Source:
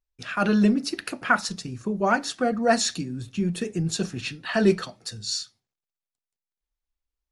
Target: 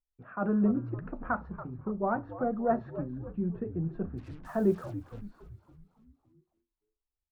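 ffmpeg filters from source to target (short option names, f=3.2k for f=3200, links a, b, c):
-filter_complex "[0:a]lowpass=f=1.2k:w=0.5412,lowpass=f=1.2k:w=1.3066,asplit=3[a][b][c];[a]afade=t=out:st=4.17:d=0.02[d];[b]acrusher=bits=7:mix=0:aa=0.5,afade=t=in:st=4.17:d=0.02,afade=t=out:st=5.2:d=0.02[e];[c]afade=t=in:st=5.2:d=0.02[f];[d][e][f]amix=inputs=3:normalize=0,asplit=7[g][h][i][j][k][l][m];[h]adelay=282,afreqshift=-90,volume=-13dB[n];[i]adelay=564,afreqshift=-180,volume=-18.4dB[o];[j]adelay=846,afreqshift=-270,volume=-23.7dB[p];[k]adelay=1128,afreqshift=-360,volume=-29.1dB[q];[l]adelay=1410,afreqshift=-450,volume=-34.4dB[r];[m]adelay=1692,afreqshift=-540,volume=-39.8dB[s];[g][n][o][p][q][r][s]amix=inputs=7:normalize=0,volume=-6.5dB"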